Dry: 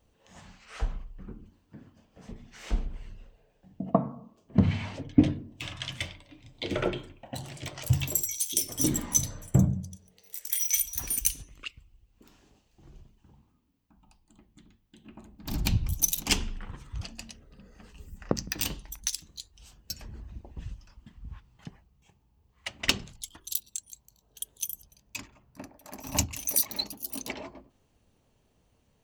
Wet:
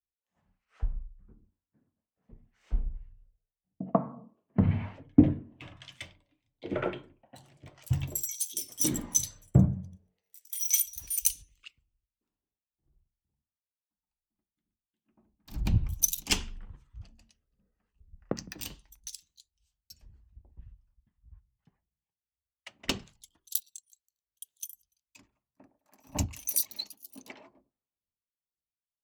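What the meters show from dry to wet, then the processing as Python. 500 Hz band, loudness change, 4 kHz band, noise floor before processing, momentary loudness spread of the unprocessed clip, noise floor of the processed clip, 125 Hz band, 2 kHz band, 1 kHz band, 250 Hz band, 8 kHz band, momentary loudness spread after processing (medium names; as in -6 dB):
-2.5 dB, 0.0 dB, -5.5 dB, -69 dBFS, 21 LU, under -85 dBFS, -1.0 dB, -6.0 dB, -2.5 dB, -0.5 dB, -2.0 dB, 21 LU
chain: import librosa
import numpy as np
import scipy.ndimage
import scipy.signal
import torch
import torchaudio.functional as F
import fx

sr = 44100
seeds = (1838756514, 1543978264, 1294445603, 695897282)

y = fx.harmonic_tremolo(x, sr, hz=2.1, depth_pct=50, crossover_hz=820.0)
y = fx.band_widen(y, sr, depth_pct=100)
y = y * librosa.db_to_amplitude(-7.5)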